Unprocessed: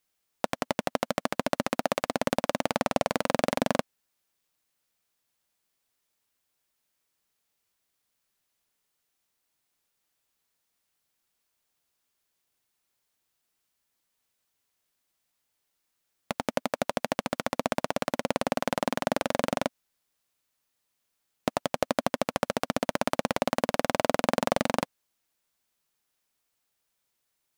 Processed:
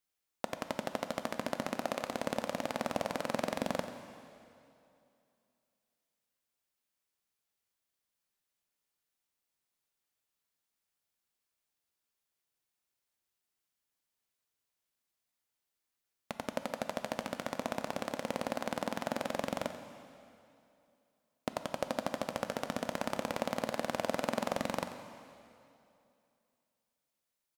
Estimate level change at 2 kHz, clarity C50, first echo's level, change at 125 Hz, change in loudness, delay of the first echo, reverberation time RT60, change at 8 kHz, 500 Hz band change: −8.0 dB, 8.0 dB, −13.5 dB, −8.0 dB, −7.5 dB, 89 ms, 2.6 s, −8.0 dB, −7.5 dB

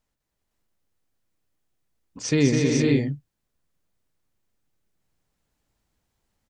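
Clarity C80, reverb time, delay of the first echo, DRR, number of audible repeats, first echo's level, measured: no reverb audible, no reverb audible, 203 ms, no reverb audible, 6, −4.0 dB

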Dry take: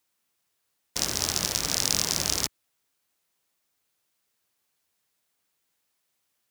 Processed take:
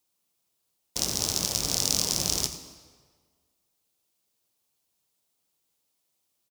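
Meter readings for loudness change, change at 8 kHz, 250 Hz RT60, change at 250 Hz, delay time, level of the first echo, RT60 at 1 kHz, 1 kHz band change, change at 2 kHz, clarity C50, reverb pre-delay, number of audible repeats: −0.5 dB, 0.0 dB, 1.6 s, +0.5 dB, 86 ms, −15.0 dB, 1.6 s, −3.0 dB, −6.5 dB, 9.5 dB, 5 ms, 1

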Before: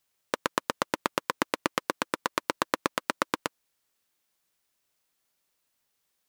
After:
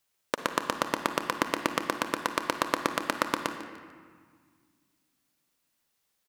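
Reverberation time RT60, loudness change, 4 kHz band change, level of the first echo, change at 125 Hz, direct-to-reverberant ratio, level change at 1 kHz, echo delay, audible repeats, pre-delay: 1.7 s, +1.0 dB, +0.5 dB, −15.0 dB, +1.5 dB, 6.5 dB, +1.0 dB, 148 ms, 1, 39 ms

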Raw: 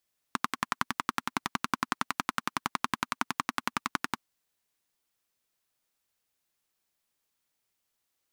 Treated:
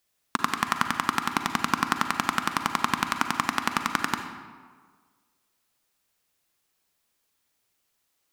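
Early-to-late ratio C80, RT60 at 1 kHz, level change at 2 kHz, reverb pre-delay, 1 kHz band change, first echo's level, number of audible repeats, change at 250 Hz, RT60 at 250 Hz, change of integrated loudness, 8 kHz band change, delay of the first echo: 8.5 dB, 1.6 s, +6.5 dB, 37 ms, +6.5 dB, no echo audible, no echo audible, +6.5 dB, 1.5 s, +6.5 dB, +6.0 dB, no echo audible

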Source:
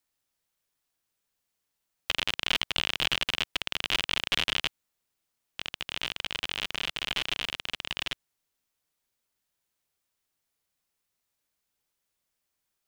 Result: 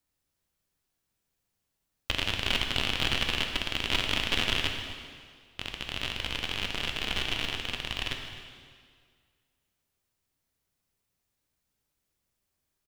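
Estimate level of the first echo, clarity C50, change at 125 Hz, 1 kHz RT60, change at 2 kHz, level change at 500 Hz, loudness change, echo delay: −16.0 dB, 4.5 dB, +8.5 dB, 1.9 s, 0.0 dB, +3.5 dB, 0.0 dB, 259 ms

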